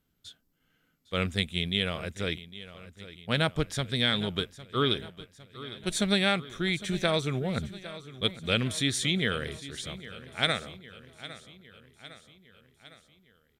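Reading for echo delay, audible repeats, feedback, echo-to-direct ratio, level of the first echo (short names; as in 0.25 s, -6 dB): 0.807 s, 4, 57%, -14.5 dB, -16.0 dB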